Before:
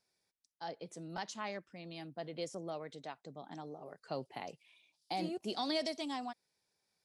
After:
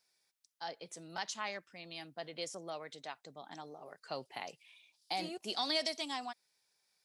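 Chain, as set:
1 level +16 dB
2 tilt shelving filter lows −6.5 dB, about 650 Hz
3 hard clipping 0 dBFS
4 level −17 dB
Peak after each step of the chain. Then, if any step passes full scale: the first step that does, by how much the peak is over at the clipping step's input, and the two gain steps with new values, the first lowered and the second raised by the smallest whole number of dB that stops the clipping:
−8.0, −4.0, −4.0, −21.0 dBFS
no step passes full scale

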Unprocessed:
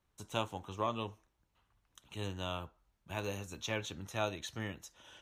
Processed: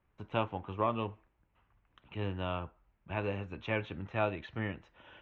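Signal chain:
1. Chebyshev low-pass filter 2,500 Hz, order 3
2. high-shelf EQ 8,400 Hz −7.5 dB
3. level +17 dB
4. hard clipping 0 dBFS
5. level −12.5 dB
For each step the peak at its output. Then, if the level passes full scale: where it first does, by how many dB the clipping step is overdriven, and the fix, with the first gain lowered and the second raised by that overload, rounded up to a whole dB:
−21.5, −21.5, −4.5, −4.5, −17.0 dBFS
no step passes full scale

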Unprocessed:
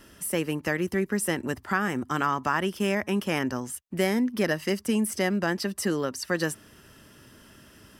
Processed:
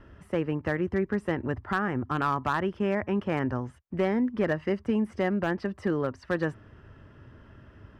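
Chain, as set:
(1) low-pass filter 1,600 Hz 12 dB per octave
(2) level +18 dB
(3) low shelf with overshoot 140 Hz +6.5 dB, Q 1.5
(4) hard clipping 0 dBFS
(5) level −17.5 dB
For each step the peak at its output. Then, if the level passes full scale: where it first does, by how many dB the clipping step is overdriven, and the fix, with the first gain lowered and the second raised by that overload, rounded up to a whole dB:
−12.0, +6.0, +5.5, 0.0, −17.5 dBFS
step 2, 5.5 dB
step 2 +12 dB, step 5 −11.5 dB

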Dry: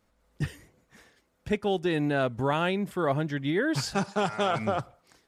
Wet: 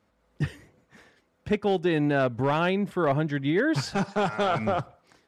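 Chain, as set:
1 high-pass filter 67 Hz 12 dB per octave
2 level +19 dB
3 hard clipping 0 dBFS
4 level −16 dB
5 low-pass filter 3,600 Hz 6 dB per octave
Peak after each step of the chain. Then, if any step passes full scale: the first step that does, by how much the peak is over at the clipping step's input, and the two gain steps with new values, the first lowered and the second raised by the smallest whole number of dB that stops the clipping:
−11.0, +8.0, 0.0, −16.0, −16.0 dBFS
step 2, 8.0 dB
step 2 +11 dB, step 4 −8 dB

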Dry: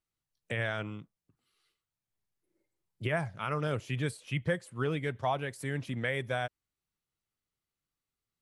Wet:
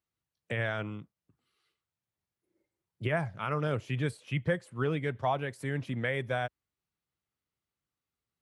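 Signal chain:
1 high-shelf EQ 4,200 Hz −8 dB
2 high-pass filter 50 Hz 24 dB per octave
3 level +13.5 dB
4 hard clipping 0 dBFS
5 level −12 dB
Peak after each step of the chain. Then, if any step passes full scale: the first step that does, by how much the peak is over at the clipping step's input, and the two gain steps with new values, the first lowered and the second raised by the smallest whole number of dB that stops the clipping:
−18.5, −18.0, −4.5, −4.5, −16.5 dBFS
no step passes full scale

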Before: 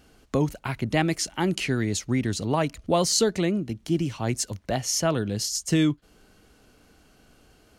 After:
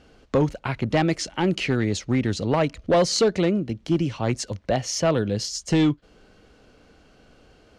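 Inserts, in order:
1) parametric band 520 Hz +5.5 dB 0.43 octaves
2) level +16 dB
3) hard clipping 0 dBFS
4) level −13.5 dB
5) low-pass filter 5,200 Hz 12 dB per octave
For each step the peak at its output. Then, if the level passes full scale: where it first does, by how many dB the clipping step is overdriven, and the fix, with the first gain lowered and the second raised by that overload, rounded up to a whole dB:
−6.0, +10.0, 0.0, −13.5, −13.0 dBFS
step 2, 10.0 dB
step 2 +6 dB, step 4 −3.5 dB

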